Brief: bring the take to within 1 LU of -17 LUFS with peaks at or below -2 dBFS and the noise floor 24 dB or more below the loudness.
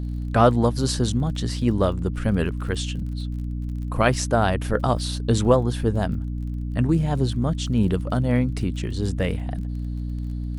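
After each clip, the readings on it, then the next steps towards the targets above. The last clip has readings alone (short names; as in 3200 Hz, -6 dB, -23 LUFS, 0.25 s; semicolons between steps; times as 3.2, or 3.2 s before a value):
ticks 29/s; hum 60 Hz; harmonics up to 300 Hz; hum level -25 dBFS; loudness -23.5 LUFS; peak -4.5 dBFS; loudness target -17.0 LUFS
-> de-click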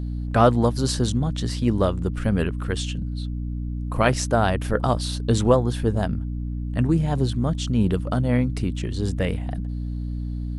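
ticks 0.19/s; hum 60 Hz; harmonics up to 300 Hz; hum level -25 dBFS
-> notches 60/120/180/240/300 Hz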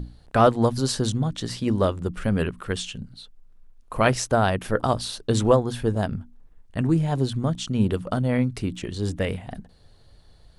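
hum none; loudness -24.0 LUFS; peak -5.0 dBFS; loudness target -17.0 LUFS
-> gain +7 dB; limiter -2 dBFS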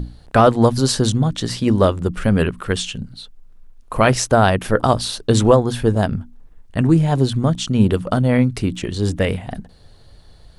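loudness -17.5 LUFS; peak -2.0 dBFS; noise floor -47 dBFS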